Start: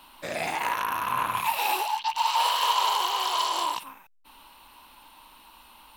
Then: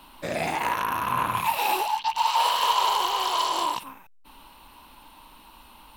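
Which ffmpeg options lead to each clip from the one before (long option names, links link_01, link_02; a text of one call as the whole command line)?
ffmpeg -i in.wav -af "lowshelf=frequency=490:gain=8.5" out.wav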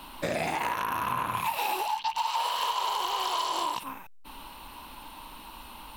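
ffmpeg -i in.wav -af "acompressor=threshold=-32dB:ratio=6,volume=5dB" out.wav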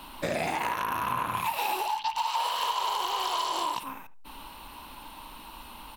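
ffmpeg -i in.wav -filter_complex "[0:a]asplit=2[link_01][link_02];[link_02]adelay=74,lowpass=frequency=1500:poles=1,volume=-15dB,asplit=2[link_03][link_04];[link_04]adelay=74,lowpass=frequency=1500:poles=1,volume=0.21[link_05];[link_01][link_03][link_05]amix=inputs=3:normalize=0" out.wav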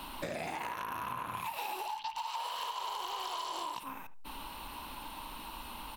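ffmpeg -i in.wav -af "acompressor=threshold=-40dB:ratio=3,volume=1dB" out.wav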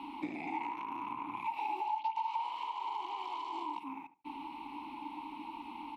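ffmpeg -i in.wav -filter_complex "[0:a]asplit=3[link_01][link_02][link_03];[link_01]bandpass=frequency=300:width_type=q:width=8,volume=0dB[link_04];[link_02]bandpass=frequency=870:width_type=q:width=8,volume=-6dB[link_05];[link_03]bandpass=frequency=2240:width_type=q:width=8,volume=-9dB[link_06];[link_04][link_05][link_06]amix=inputs=3:normalize=0,volume=11.5dB" out.wav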